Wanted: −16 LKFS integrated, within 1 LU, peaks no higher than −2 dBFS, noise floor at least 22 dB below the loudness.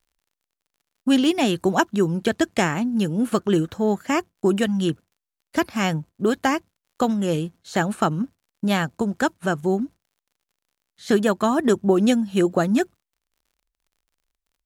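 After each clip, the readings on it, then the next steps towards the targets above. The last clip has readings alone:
crackle rate 41 per second; integrated loudness −22.5 LKFS; sample peak −5.0 dBFS; target loudness −16.0 LKFS
→ click removal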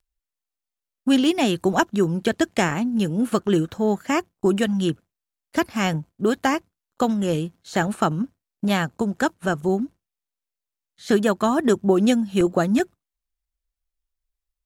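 crackle rate 0.27 per second; integrated loudness −22.5 LKFS; sample peak −5.0 dBFS; target loudness −16.0 LKFS
→ level +6.5 dB
brickwall limiter −2 dBFS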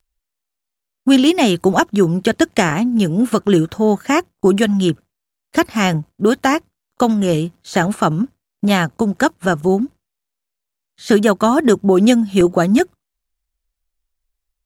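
integrated loudness −16.0 LKFS; sample peak −2.0 dBFS; background noise floor −80 dBFS

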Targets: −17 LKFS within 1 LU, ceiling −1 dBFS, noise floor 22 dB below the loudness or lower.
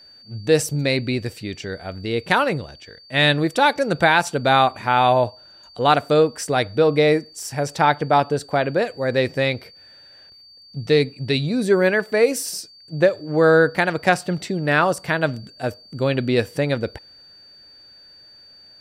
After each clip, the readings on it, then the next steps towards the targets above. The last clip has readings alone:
interfering tone 4,600 Hz; level of the tone −45 dBFS; integrated loudness −20.0 LKFS; sample peak −3.0 dBFS; target loudness −17.0 LKFS
→ notch filter 4,600 Hz, Q 30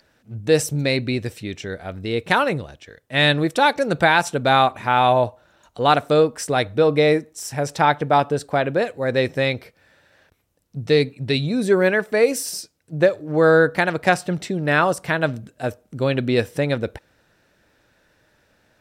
interfering tone none found; integrated loudness −20.0 LKFS; sample peak −3.0 dBFS; target loudness −17.0 LKFS
→ level +3 dB
brickwall limiter −1 dBFS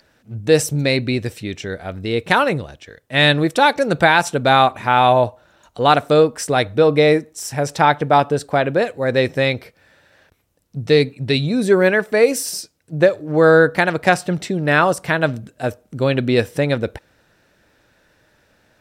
integrated loudness −17.0 LKFS; sample peak −1.0 dBFS; background noise floor −60 dBFS

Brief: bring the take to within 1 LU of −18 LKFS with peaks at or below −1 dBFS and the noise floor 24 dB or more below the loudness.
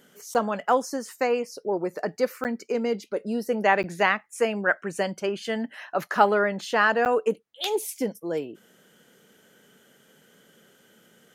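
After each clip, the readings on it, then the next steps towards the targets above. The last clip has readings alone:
number of dropouts 4; longest dropout 9.0 ms; integrated loudness −26.0 LKFS; sample peak −5.0 dBFS; target loudness −18.0 LKFS
→ repair the gap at 0:00.34/0:02.44/0:03.83/0:07.05, 9 ms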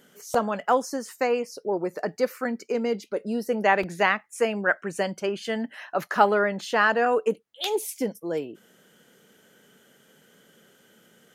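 number of dropouts 0; integrated loudness −26.0 LKFS; sample peak −5.0 dBFS; target loudness −18.0 LKFS
→ level +8 dB
brickwall limiter −1 dBFS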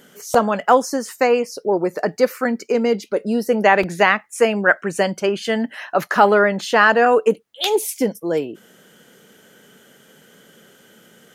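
integrated loudness −18.5 LKFS; sample peak −1.0 dBFS; background noise floor −52 dBFS

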